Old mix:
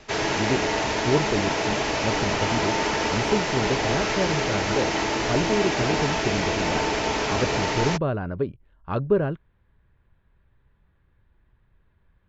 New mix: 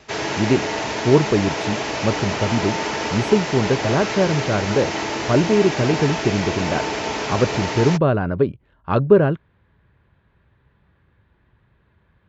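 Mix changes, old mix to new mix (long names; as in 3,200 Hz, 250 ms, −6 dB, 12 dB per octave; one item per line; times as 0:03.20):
speech +8.0 dB
master: add high-pass filter 79 Hz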